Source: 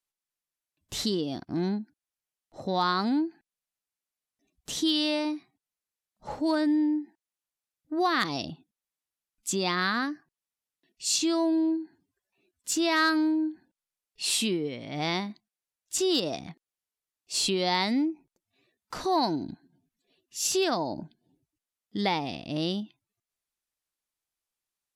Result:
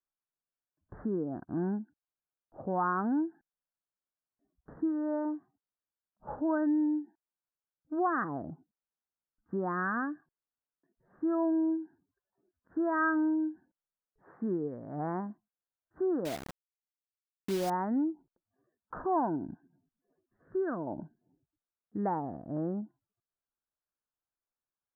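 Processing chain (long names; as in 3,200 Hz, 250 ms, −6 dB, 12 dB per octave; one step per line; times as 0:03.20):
Butterworth low-pass 1,700 Hz 96 dB per octave
0:16.25–0:17.70: bit-depth reduction 6 bits, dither none
0:20.42–0:20.87: parametric band 820 Hz −13.5 dB 0.66 octaves
level −3.5 dB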